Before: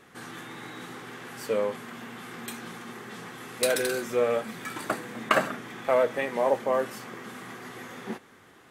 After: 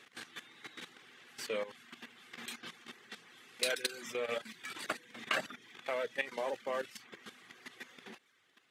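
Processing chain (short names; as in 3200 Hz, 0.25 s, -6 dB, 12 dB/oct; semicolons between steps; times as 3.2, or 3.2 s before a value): reverb removal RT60 0.55 s; level quantiser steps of 14 dB; weighting filter D; gain -7 dB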